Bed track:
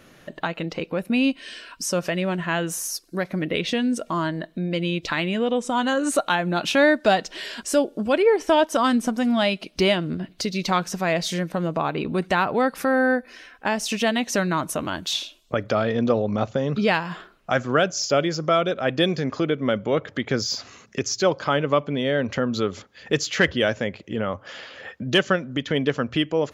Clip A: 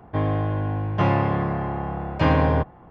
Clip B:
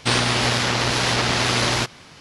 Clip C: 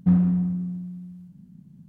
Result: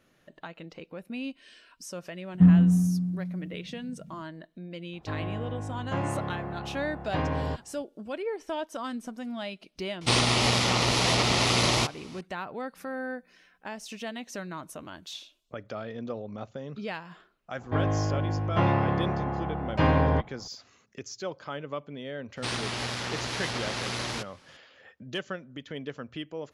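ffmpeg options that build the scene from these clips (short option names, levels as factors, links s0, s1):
-filter_complex "[3:a]asplit=2[s0][s1];[1:a]asplit=2[s2][s3];[2:a]asplit=2[s4][s5];[0:a]volume=0.178[s6];[s0]equalizer=f=180:w=1.5:g=3.5[s7];[s4]equalizer=f=1600:w=5.8:g=-12.5[s8];[s1]aderivative[s9];[s7]atrim=end=1.88,asetpts=PTS-STARTPTS,volume=0.841,afade=t=in:d=0.004:c=hsin,afade=t=out:st=1.876:d=0.004:c=hsin,adelay=2340[s10];[s2]atrim=end=2.9,asetpts=PTS-STARTPTS,volume=0.299,afade=t=in:d=0.004:c=hsin,afade=t=out:st=2.896:d=0.004:c=hsin,adelay=217413S[s11];[s8]atrim=end=2.2,asetpts=PTS-STARTPTS,volume=0.708,afade=t=in:d=0.004:c=hsin,afade=t=out:st=2.196:d=0.004:c=hsin,adelay=10010[s12];[s9]atrim=end=1.88,asetpts=PTS-STARTPTS,volume=0.158,afade=t=in:d=0.004:c=hsin,afade=t=out:st=1.876:d=0.004:c=hsin,adelay=12690[s13];[s3]atrim=end=2.9,asetpts=PTS-STARTPTS,volume=0.668,afade=t=in:d=0.004:c=hsin,afade=t=out:st=2.896:d=0.004:c=hsin,adelay=17580[s14];[s5]atrim=end=2.2,asetpts=PTS-STARTPTS,volume=0.237,afade=t=in:d=0.004:c=hsin,afade=t=out:st=2.196:d=0.004:c=hsin,adelay=22370[s15];[s6][s10][s11][s12][s13][s14][s15]amix=inputs=7:normalize=0"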